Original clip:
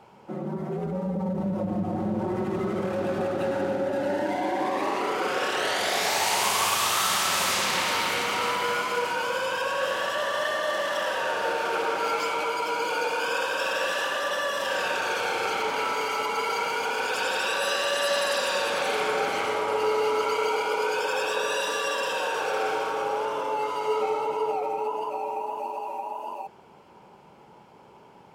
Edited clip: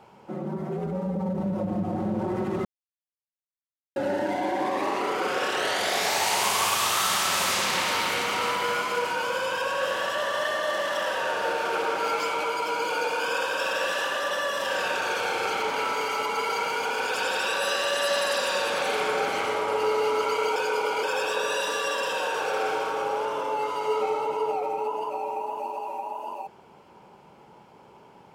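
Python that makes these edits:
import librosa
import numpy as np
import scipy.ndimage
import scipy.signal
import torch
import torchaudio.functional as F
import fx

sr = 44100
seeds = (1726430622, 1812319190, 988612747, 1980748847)

y = fx.edit(x, sr, fx.silence(start_s=2.65, length_s=1.31),
    fx.reverse_span(start_s=20.56, length_s=0.47), tone=tone)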